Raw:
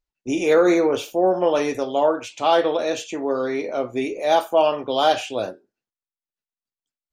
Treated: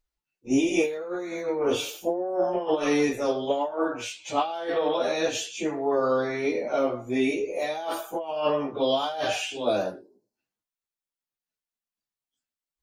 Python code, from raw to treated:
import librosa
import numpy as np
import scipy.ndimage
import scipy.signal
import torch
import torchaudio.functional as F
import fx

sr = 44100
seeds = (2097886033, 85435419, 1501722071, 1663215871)

y = fx.over_compress(x, sr, threshold_db=-21.0, ratio=-0.5)
y = fx.spec_box(y, sr, start_s=5.56, length_s=0.2, low_hz=1100.0, high_hz=3900.0, gain_db=-19)
y = fx.stretch_vocoder_free(y, sr, factor=1.8)